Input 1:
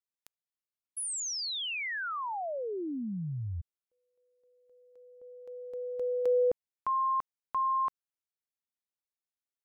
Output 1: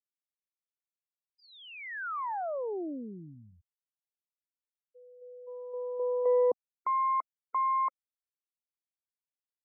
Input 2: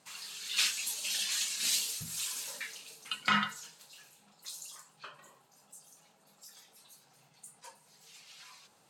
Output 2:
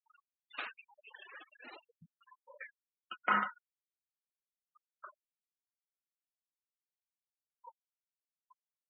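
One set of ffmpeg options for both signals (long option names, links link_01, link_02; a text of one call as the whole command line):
ffmpeg -i in.wav -af "aeval=exprs='if(lt(val(0),0),0.447*val(0),val(0))':channel_layout=same,asuperpass=centerf=670:order=4:qfactor=0.54,afftfilt=real='re*gte(hypot(re,im),0.00794)':imag='im*gte(hypot(re,im),0.00794)':win_size=1024:overlap=0.75,volume=4dB" out.wav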